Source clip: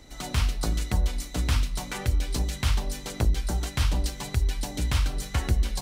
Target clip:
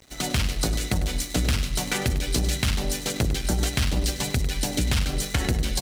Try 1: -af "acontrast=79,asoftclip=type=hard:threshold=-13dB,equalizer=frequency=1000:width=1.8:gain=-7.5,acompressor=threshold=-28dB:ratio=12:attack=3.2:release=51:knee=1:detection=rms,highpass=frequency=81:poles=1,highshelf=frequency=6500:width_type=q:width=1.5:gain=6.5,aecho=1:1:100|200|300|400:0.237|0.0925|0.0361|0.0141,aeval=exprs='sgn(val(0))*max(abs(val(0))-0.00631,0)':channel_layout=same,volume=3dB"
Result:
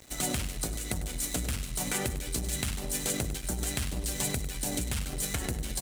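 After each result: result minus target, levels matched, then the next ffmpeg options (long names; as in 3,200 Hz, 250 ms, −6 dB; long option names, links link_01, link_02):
downward compressor: peak gain reduction +8.5 dB; 8,000 Hz band +4.5 dB
-af "acontrast=79,asoftclip=type=hard:threshold=-13dB,equalizer=frequency=1000:width=1.8:gain=-7.5,acompressor=threshold=-18.5dB:ratio=12:attack=3.2:release=51:knee=1:detection=rms,highpass=frequency=81:poles=1,highshelf=frequency=6500:width_type=q:width=1.5:gain=6.5,aecho=1:1:100|200|300|400:0.237|0.0925|0.0361|0.0141,aeval=exprs='sgn(val(0))*max(abs(val(0))-0.00631,0)':channel_layout=same,volume=3dB"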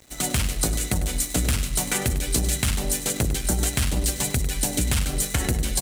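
8,000 Hz band +4.5 dB
-af "acontrast=79,asoftclip=type=hard:threshold=-13dB,equalizer=frequency=1000:width=1.8:gain=-7.5,acompressor=threshold=-18.5dB:ratio=12:attack=3.2:release=51:knee=1:detection=rms,highpass=frequency=81:poles=1,aecho=1:1:100|200|300|400:0.237|0.0925|0.0361|0.0141,aeval=exprs='sgn(val(0))*max(abs(val(0))-0.00631,0)':channel_layout=same,volume=3dB"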